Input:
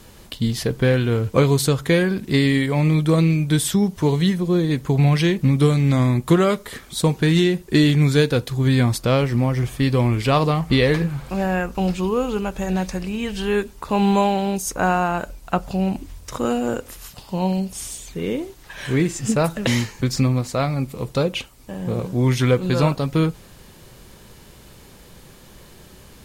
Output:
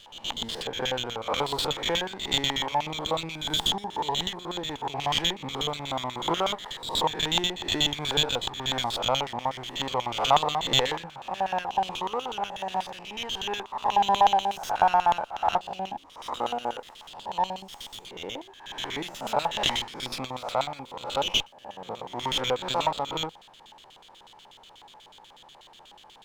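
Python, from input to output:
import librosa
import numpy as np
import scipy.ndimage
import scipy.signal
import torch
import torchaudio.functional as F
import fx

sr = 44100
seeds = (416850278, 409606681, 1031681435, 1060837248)

y = fx.spec_swells(x, sr, rise_s=0.66)
y = fx.filter_lfo_bandpass(y, sr, shape='square', hz=8.2, low_hz=850.0, high_hz=3300.0, q=7.5)
y = fx.running_max(y, sr, window=3)
y = y * 10.0 ** (9.0 / 20.0)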